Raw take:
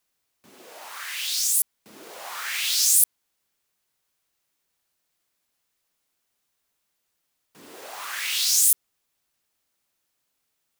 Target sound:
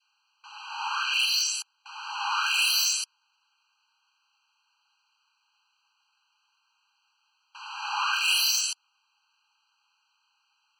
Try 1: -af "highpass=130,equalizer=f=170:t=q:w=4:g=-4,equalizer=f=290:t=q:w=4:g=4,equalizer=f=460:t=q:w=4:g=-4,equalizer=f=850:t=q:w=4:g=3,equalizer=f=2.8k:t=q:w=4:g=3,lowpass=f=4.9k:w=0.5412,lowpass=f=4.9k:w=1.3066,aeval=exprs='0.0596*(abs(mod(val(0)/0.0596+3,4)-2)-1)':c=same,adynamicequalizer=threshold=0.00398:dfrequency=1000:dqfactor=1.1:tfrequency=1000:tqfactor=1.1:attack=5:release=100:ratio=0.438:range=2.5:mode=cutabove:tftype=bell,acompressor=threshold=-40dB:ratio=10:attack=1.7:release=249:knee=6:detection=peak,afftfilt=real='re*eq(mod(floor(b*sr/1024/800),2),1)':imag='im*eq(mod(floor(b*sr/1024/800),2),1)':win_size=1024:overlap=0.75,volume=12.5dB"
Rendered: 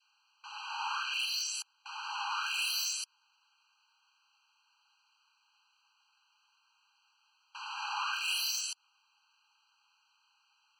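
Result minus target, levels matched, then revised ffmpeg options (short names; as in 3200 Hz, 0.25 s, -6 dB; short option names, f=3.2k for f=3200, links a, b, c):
compressor: peak gain reduction +9.5 dB
-af "highpass=130,equalizer=f=170:t=q:w=4:g=-4,equalizer=f=290:t=q:w=4:g=4,equalizer=f=460:t=q:w=4:g=-4,equalizer=f=850:t=q:w=4:g=3,equalizer=f=2.8k:t=q:w=4:g=3,lowpass=f=4.9k:w=0.5412,lowpass=f=4.9k:w=1.3066,aeval=exprs='0.0596*(abs(mod(val(0)/0.0596+3,4)-2)-1)':c=same,adynamicequalizer=threshold=0.00398:dfrequency=1000:dqfactor=1.1:tfrequency=1000:tqfactor=1.1:attack=5:release=100:ratio=0.438:range=2.5:mode=cutabove:tftype=bell,acompressor=threshold=-29dB:ratio=10:attack=1.7:release=249:knee=6:detection=peak,afftfilt=real='re*eq(mod(floor(b*sr/1024/800),2),1)':imag='im*eq(mod(floor(b*sr/1024/800),2),1)':win_size=1024:overlap=0.75,volume=12.5dB"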